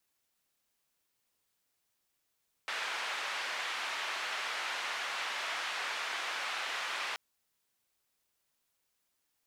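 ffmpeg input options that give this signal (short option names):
-f lavfi -i "anoisesrc=c=white:d=4.48:r=44100:seed=1,highpass=f=880,lowpass=f=2500,volume=-21.3dB"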